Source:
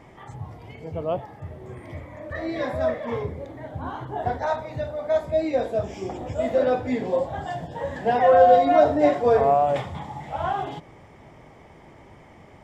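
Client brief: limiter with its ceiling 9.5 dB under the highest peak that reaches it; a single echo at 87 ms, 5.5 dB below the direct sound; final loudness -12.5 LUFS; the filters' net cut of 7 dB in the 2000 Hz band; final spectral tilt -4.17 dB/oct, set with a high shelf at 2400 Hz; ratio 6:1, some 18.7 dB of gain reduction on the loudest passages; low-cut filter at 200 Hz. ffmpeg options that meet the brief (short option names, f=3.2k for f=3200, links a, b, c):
-af "highpass=200,equalizer=f=2k:t=o:g=-7.5,highshelf=f=2.4k:g=-4,acompressor=threshold=-33dB:ratio=6,alimiter=level_in=10dB:limit=-24dB:level=0:latency=1,volume=-10dB,aecho=1:1:87:0.531,volume=29dB"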